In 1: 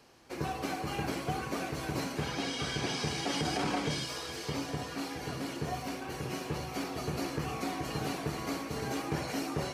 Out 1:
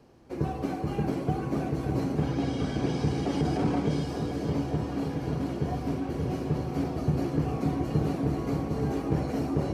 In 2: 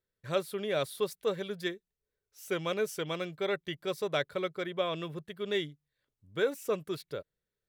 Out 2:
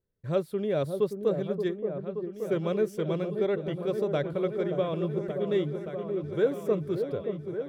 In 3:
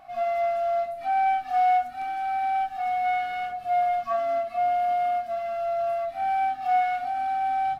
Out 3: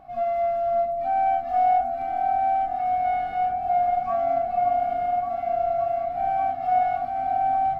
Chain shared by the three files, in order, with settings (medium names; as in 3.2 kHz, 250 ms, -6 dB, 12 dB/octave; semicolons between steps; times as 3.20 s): tilt shelf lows +9 dB, about 810 Hz; delay with an opening low-pass 576 ms, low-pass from 750 Hz, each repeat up 1 oct, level -6 dB